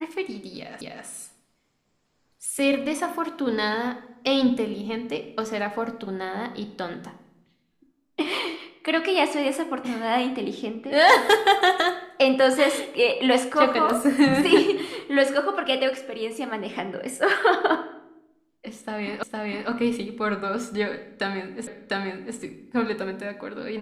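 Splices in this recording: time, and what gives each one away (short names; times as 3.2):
0.81 repeat of the last 0.25 s
19.23 repeat of the last 0.46 s
21.67 repeat of the last 0.7 s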